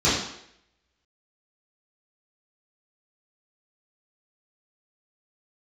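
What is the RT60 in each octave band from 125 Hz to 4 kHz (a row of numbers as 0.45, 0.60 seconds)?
0.55, 0.70, 0.75, 0.70, 0.75, 0.70 seconds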